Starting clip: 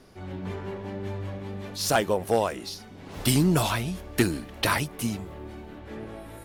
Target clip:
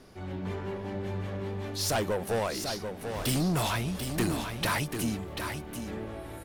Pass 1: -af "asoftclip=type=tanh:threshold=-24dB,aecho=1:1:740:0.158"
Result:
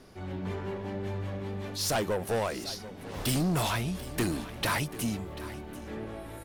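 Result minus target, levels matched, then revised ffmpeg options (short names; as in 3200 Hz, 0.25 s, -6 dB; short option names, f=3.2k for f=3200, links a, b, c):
echo-to-direct -9 dB
-af "asoftclip=type=tanh:threshold=-24dB,aecho=1:1:740:0.447"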